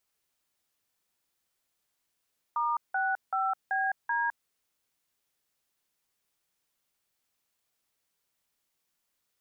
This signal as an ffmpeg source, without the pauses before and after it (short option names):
-f lavfi -i "aevalsrc='0.0376*clip(min(mod(t,0.383),0.209-mod(t,0.383))/0.002,0,1)*(eq(floor(t/0.383),0)*(sin(2*PI*941*mod(t,0.383))+sin(2*PI*1209*mod(t,0.383)))+eq(floor(t/0.383),1)*(sin(2*PI*770*mod(t,0.383))+sin(2*PI*1477*mod(t,0.383)))+eq(floor(t/0.383),2)*(sin(2*PI*770*mod(t,0.383))+sin(2*PI*1336*mod(t,0.383)))+eq(floor(t/0.383),3)*(sin(2*PI*770*mod(t,0.383))+sin(2*PI*1633*mod(t,0.383)))+eq(floor(t/0.383),4)*(sin(2*PI*941*mod(t,0.383))+sin(2*PI*1633*mod(t,0.383))))':d=1.915:s=44100"